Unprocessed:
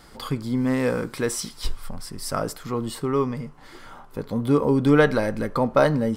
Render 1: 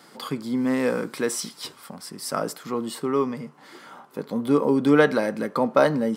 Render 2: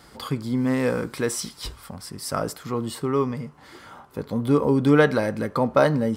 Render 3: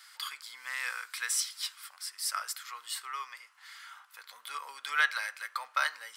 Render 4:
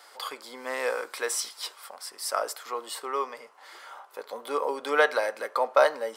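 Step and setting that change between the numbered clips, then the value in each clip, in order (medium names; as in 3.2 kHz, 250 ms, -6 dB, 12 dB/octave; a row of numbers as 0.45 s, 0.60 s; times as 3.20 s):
high-pass, cutoff frequency: 170 Hz, 48 Hz, 1.4 kHz, 540 Hz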